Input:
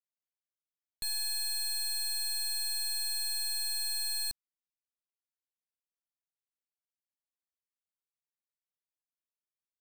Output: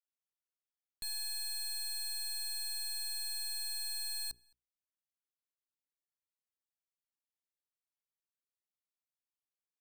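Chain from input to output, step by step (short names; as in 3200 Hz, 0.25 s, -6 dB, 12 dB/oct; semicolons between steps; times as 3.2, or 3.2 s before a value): notches 60/120/180/240/300/360/420 Hz; sample leveller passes 1; outdoor echo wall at 37 m, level -28 dB; gain -5.5 dB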